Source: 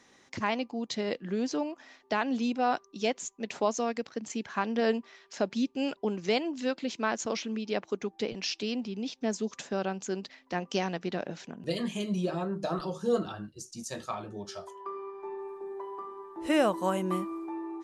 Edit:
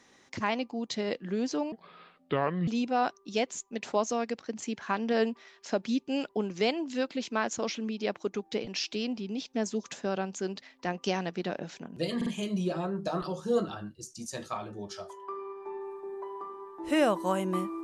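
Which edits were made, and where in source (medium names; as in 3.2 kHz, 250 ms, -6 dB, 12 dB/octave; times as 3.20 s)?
1.72–2.35 s: speed 66%
11.84 s: stutter 0.05 s, 3 plays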